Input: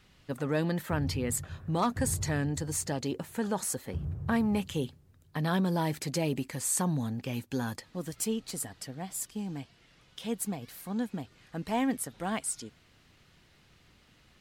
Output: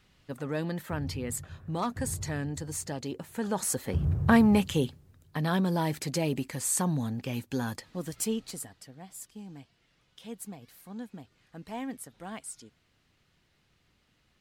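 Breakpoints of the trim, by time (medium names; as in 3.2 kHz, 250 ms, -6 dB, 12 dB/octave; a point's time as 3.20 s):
3.23 s -3 dB
4.15 s +9 dB
5.41 s +1 dB
8.38 s +1 dB
8.81 s -8 dB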